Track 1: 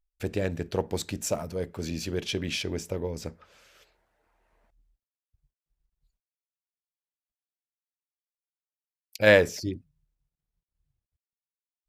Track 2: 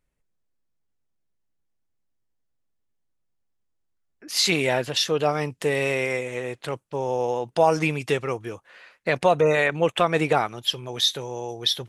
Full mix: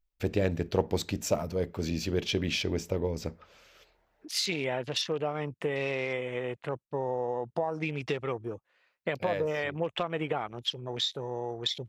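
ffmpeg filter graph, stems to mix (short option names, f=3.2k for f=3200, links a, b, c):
-filter_complex "[0:a]equalizer=f=9.7k:t=o:w=0.73:g=-11,volume=1.5dB[a];[1:a]highshelf=f=8k:g=-4.5,acompressor=threshold=-24dB:ratio=10,afwtdn=0.01,volume=-2.5dB,asplit=2[b][c];[c]apad=whole_len=524065[d];[a][d]sidechaincompress=threshold=-48dB:ratio=4:attack=6.9:release=343[e];[e][b]amix=inputs=2:normalize=0,equalizer=f=1.6k:t=o:w=0.42:g=-3"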